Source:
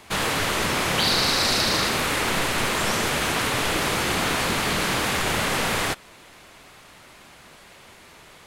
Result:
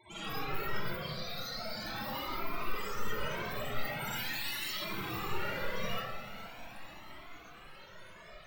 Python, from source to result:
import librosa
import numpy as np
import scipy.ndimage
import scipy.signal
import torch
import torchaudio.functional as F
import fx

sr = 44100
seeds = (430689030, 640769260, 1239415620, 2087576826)

y = fx.envelope_flatten(x, sr, power=0.3)
y = fx.highpass(y, sr, hz=1400.0, slope=6, at=(4.07, 4.76))
y = fx.over_compress(y, sr, threshold_db=-26.0, ratio=-0.5)
y = fx.spec_topn(y, sr, count=8)
y = 10.0 ** (-37.5 / 20.0) * np.tanh(y / 10.0 ** (-37.5 / 20.0))
y = fx.vibrato(y, sr, rate_hz=9.4, depth_cents=69.0)
y = fx.echo_diffused(y, sr, ms=455, feedback_pct=64, wet_db=-12.5)
y = fx.rev_freeverb(y, sr, rt60_s=1.1, hf_ratio=0.65, predelay_ms=15, drr_db=-9.5)
y = fx.comb_cascade(y, sr, direction='rising', hz=0.42)